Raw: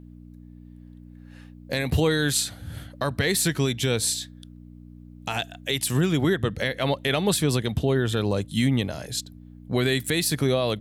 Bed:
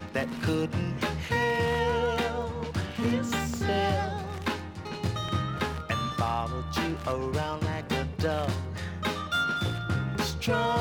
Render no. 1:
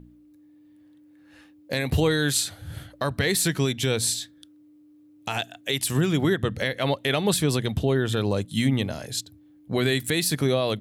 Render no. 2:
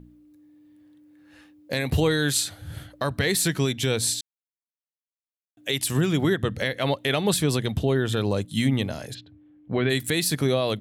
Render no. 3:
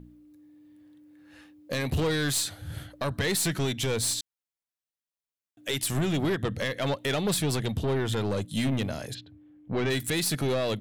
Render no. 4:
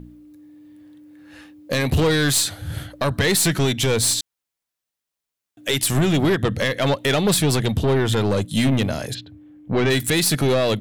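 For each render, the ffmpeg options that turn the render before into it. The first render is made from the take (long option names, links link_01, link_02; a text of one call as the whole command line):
ffmpeg -i in.wav -af "bandreject=frequency=60:width_type=h:width=4,bandreject=frequency=120:width_type=h:width=4,bandreject=frequency=180:width_type=h:width=4,bandreject=frequency=240:width_type=h:width=4" out.wav
ffmpeg -i in.wav -filter_complex "[0:a]asplit=3[link_01][link_02][link_03];[link_01]afade=type=out:start_time=9.13:duration=0.02[link_04];[link_02]lowpass=frequency=3000:width=0.5412,lowpass=frequency=3000:width=1.3066,afade=type=in:start_time=9.13:duration=0.02,afade=type=out:start_time=9.89:duration=0.02[link_05];[link_03]afade=type=in:start_time=9.89:duration=0.02[link_06];[link_04][link_05][link_06]amix=inputs=3:normalize=0,asplit=3[link_07][link_08][link_09];[link_07]atrim=end=4.21,asetpts=PTS-STARTPTS,afade=type=out:start_time=4.206:duration=0.004:curve=hsin[link_10];[link_08]atrim=start=4.21:end=5.57,asetpts=PTS-STARTPTS,volume=0[link_11];[link_09]atrim=start=5.57,asetpts=PTS-STARTPTS,afade=type=in:duration=0.004:curve=hsin[link_12];[link_10][link_11][link_12]concat=n=3:v=0:a=1" out.wav
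ffmpeg -i in.wav -af "aeval=exprs='(tanh(12.6*val(0)+0.15)-tanh(0.15))/12.6':channel_layout=same" out.wav
ffmpeg -i in.wav -af "volume=8.5dB" out.wav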